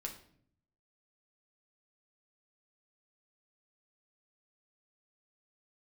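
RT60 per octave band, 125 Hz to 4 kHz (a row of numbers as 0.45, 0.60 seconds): 1.0, 0.90, 0.70, 0.50, 0.50, 0.45 seconds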